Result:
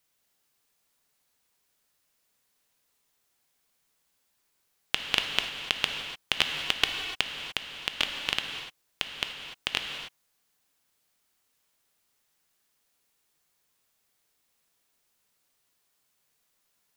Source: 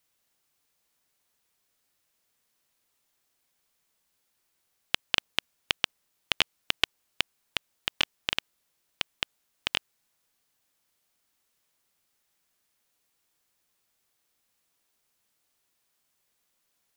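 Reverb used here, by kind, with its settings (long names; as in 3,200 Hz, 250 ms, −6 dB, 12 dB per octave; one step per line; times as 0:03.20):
reverb whose tail is shaped and stops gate 320 ms flat, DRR 3.5 dB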